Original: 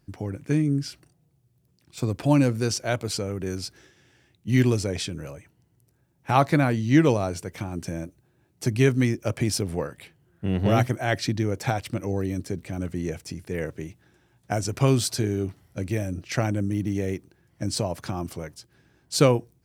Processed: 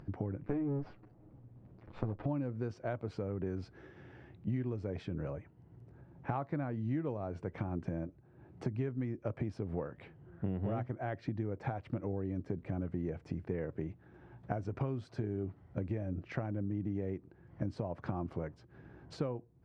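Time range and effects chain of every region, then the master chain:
0:00.43–0:02.26: lower of the sound and its delayed copy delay 9.5 ms + high-frequency loss of the air 110 metres
whole clip: downward compressor 12 to 1, threshold −32 dBFS; low-pass filter 1,300 Hz 12 dB per octave; upward compression, threshold −44 dBFS

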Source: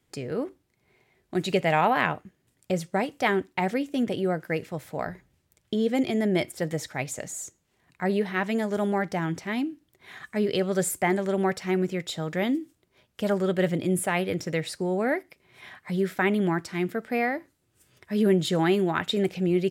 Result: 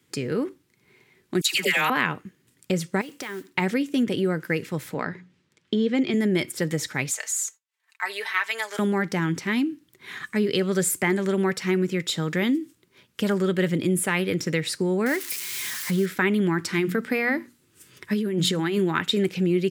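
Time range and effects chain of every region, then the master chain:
0:01.41–0:01.90: spectral tilt +4 dB per octave + all-pass dispersion lows, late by 134 ms, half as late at 1,000 Hz
0:03.01–0:03.50: low-shelf EQ 130 Hz −12 dB + downward compressor 8 to 1, threshold −36 dBFS + noise that follows the level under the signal 20 dB
0:04.94–0:06.14: band-pass filter 120–4,600 Hz + mains-hum notches 60/120/180 Hz
0:07.10–0:08.79: downward expander −59 dBFS + high-pass filter 720 Hz 24 dB per octave + comb filter 4.5 ms, depth 67%
0:15.06–0:16.06: spike at every zero crossing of −27.5 dBFS + high-shelf EQ 12,000 Hz −5.5 dB
0:16.59–0:18.78: mains-hum notches 60/120/180/240 Hz + compressor whose output falls as the input rises −27 dBFS
whole clip: high-pass filter 130 Hz; parametric band 680 Hz −14 dB 0.6 octaves; downward compressor 2 to 1, threshold −30 dBFS; level +8 dB

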